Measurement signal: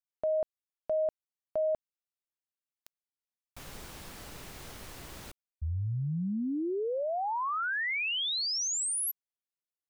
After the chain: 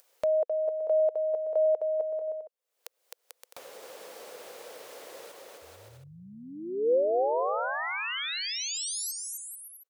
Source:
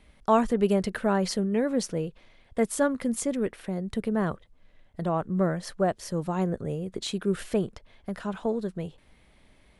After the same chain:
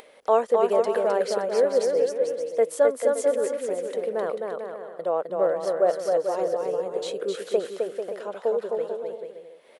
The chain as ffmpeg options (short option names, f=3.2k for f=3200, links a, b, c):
-af "highpass=f=500:t=q:w=4.9,aecho=1:1:260|442|569.4|658.6|721:0.631|0.398|0.251|0.158|0.1,acompressor=mode=upward:threshold=-39dB:ratio=2.5:attack=16:release=295:knee=2.83:detection=peak,volume=-4dB"